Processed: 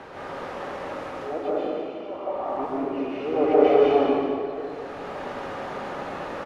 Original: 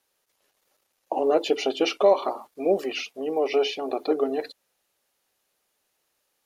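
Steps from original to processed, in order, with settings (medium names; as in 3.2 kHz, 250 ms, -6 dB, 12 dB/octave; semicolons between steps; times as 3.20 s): jump at every zero crossing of -25.5 dBFS; low-pass 1.2 kHz 12 dB/octave; bass shelf 63 Hz -9 dB; slow attack 790 ms; delay 203 ms -9.5 dB; plate-style reverb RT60 2.2 s, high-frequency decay 0.85×, pre-delay 115 ms, DRR -8 dB; trim -2 dB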